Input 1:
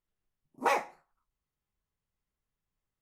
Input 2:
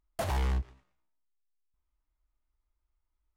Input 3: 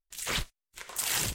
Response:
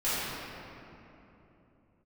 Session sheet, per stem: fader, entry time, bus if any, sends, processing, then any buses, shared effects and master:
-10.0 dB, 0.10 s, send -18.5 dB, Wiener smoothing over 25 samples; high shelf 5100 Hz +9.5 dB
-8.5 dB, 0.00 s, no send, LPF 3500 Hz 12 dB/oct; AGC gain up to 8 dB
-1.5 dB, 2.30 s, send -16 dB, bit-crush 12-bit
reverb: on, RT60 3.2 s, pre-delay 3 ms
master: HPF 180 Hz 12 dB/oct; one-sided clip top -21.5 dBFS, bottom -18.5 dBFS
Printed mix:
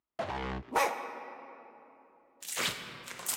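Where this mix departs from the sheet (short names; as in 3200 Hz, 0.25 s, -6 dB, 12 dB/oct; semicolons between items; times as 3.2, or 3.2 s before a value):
stem 1 -10.0 dB -> -1.5 dB; stem 2 -8.5 dB -> -2.5 dB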